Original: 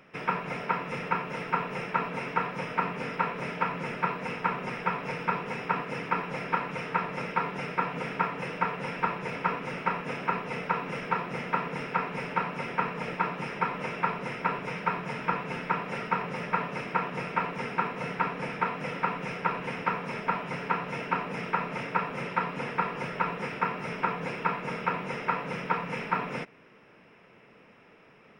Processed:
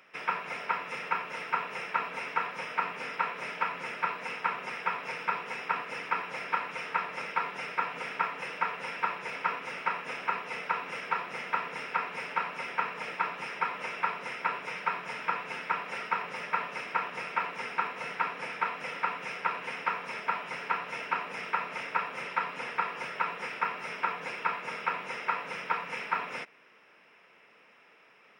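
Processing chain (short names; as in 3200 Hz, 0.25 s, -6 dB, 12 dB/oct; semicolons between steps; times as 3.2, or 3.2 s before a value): HPF 1200 Hz 6 dB/oct; gain +1.5 dB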